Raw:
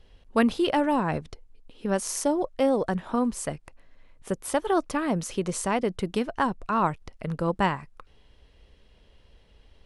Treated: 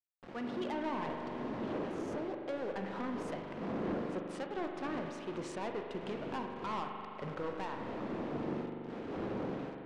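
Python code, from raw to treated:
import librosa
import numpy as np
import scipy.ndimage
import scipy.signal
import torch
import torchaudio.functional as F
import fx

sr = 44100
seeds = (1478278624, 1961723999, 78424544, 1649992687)

y = fx.dmg_wind(x, sr, seeds[0], corner_hz=310.0, level_db=-23.0)
y = fx.doppler_pass(y, sr, speed_mps=15, closest_m=3.3, pass_at_s=3.74)
y = fx.recorder_agc(y, sr, target_db=-22.5, rise_db_per_s=22.0, max_gain_db=30)
y = scipy.signal.sosfilt(scipy.signal.butter(2, 240.0, 'highpass', fs=sr, output='sos'), y)
y = np.where(np.abs(y) >= 10.0 ** (-45.0 / 20.0), y, 0.0)
y = scipy.signal.sosfilt(scipy.signal.butter(2, 3300.0, 'lowpass', fs=sr, output='sos'), y)
y = 10.0 ** (-33.0 / 20.0) * np.tanh(y / 10.0 ** (-33.0 / 20.0))
y = fx.rev_spring(y, sr, rt60_s=3.0, pass_ms=(41,), chirp_ms=65, drr_db=3.0)
y = y * librosa.db_to_amplitude(-1.0)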